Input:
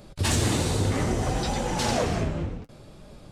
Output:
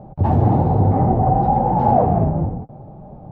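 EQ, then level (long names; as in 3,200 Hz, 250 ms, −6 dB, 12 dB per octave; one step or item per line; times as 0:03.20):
low-pass with resonance 790 Hz, resonance Q 7.3
parametric band 140 Hz +12 dB 2 octaves
0.0 dB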